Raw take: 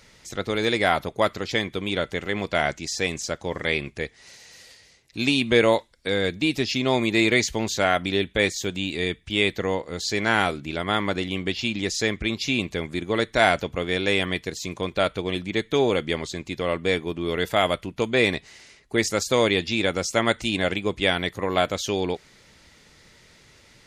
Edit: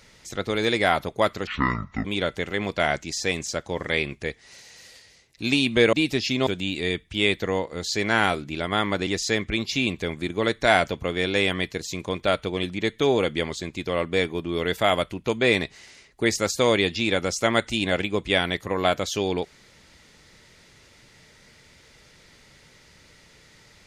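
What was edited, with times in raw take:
1.47–1.80 s: speed 57%
5.68–6.38 s: delete
6.92–8.63 s: delete
11.23–11.79 s: delete

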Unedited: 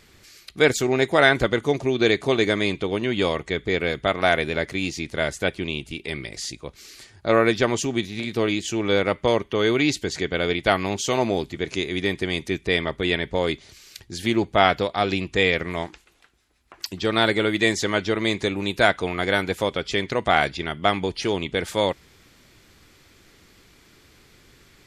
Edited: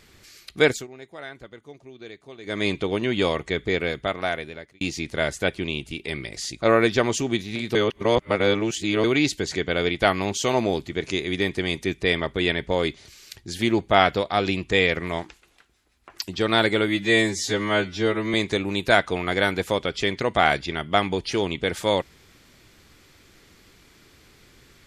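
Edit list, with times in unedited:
0.63–2.67 s: dip -22 dB, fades 0.24 s
3.66–4.81 s: fade out
6.62–7.26 s: delete
8.39–9.68 s: reverse
17.52–18.25 s: stretch 2×

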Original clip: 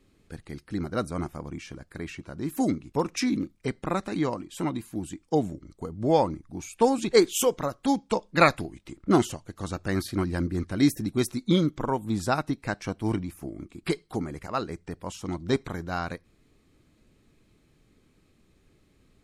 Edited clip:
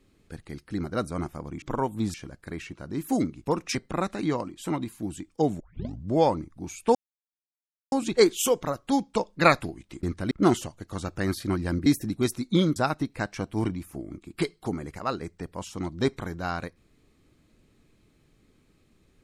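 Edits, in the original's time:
3.23–3.68 s: delete
5.53 s: tape start 0.52 s
6.88 s: insert silence 0.97 s
10.54–10.82 s: move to 8.99 s
11.72–12.24 s: move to 1.62 s

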